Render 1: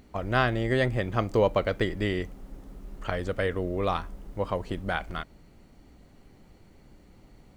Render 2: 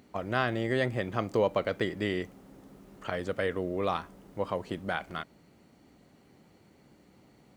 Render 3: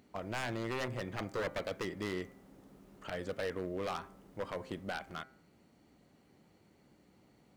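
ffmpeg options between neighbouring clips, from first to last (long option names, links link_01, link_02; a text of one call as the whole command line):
ffmpeg -i in.wav -filter_complex "[0:a]highpass=130,asplit=2[link_01][link_02];[link_02]alimiter=limit=-17dB:level=0:latency=1,volume=-2.5dB[link_03];[link_01][link_03]amix=inputs=2:normalize=0,volume=-6.5dB" out.wav
ffmpeg -i in.wav -af "aeval=exprs='0.0668*(abs(mod(val(0)/0.0668+3,4)-2)-1)':channel_layout=same,bandreject=frequency=131.7:width_type=h:width=4,bandreject=frequency=263.4:width_type=h:width=4,bandreject=frequency=395.1:width_type=h:width=4,bandreject=frequency=526.8:width_type=h:width=4,bandreject=frequency=658.5:width_type=h:width=4,bandreject=frequency=790.2:width_type=h:width=4,bandreject=frequency=921.9:width_type=h:width=4,bandreject=frequency=1053.6:width_type=h:width=4,bandreject=frequency=1185.3:width_type=h:width=4,bandreject=frequency=1317:width_type=h:width=4,bandreject=frequency=1448.7:width_type=h:width=4,bandreject=frequency=1580.4:width_type=h:width=4,bandreject=frequency=1712.1:width_type=h:width=4,bandreject=frequency=1843.8:width_type=h:width=4,bandreject=frequency=1975.5:width_type=h:width=4,bandreject=frequency=2107.2:width_type=h:width=4,bandreject=frequency=2238.9:width_type=h:width=4,bandreject=frequency=2370.6:width_type=h:width=4,volume=-5.5dB" out.wav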